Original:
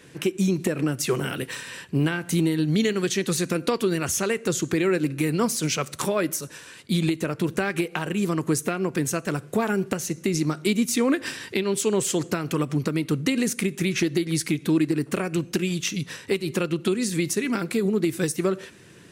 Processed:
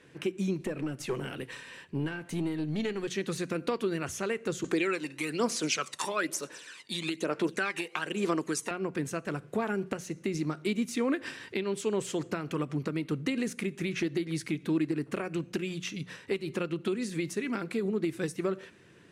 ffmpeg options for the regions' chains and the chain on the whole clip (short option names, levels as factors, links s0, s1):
-filter_complex "[0:a]asettb=1/sr,asplit=3[s0][s1][s2];[s0]atrim=end=0.594[s3];[s1]atrim=start=0.59:end=3.08,asetpts=PTS-STARTPTS,afade=t=in:d=0.004:c=qsin,afade=t=out:st=2.486:d=0.004:c=qsin,equalizer=f=1400:t=o:w=0.24:g=-4,aeval=exprs='(tanh(6.31*val(0)+0.3)-tanh(0.3))/6.31':c=same[s4];[s2]atrim=start=3.076[s5];[s3][s4]acrossfade=d=0.004:c1=hsin:c2=qsin[s6];[s6][s5]acrossfade=d=0.004:c1=qsin:c2=hsin,asettb=1/sr,asplit=3[s7][s8][s9];[s7]atrim=end=4.644[s10];[s8]atrim=start=4.64:end=8.71,asetpts=PTS-STARTPTS,afade=t=in:d=0.004:c=qsin,afade=t=out:st=4.066:d=0.004:c=qsin,aemphasis=mode=production:type=75kf,aphaser=in_gain=1:out_gain=1:delay=1.1:decay=0.56:speed=1.1:type=sinusoidal,highpass=310,lowpass=7200[s11];[s9]atrim=start=8.706[s12];[s10][s11]acrossfade=d=0.004:c1=hsin:c2=qsin[s13];[s13][s12]acrossfade=d=0.004:c1=qsin:c2=hsin,lowpass=12000,bass=f=250:g=-2,treble=f=4000:g=-8,bandreject=f=60:t=h:w=6,bandreject=f=120:t=h:w=6,bandreject=f=180:t=h:w=6,volume=0.473"